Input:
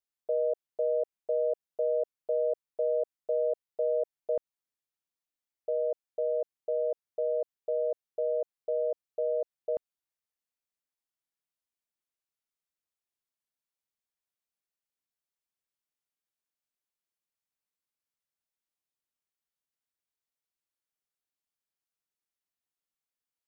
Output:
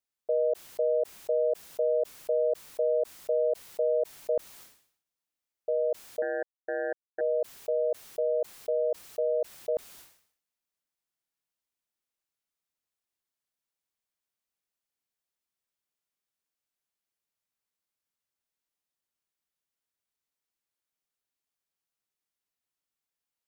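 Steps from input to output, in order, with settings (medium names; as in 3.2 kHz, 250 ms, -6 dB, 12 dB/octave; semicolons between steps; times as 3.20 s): 6.22–7.21 s: power-law waveshaper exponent 3; decay stretcher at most 96 dB/s; trim +2 dB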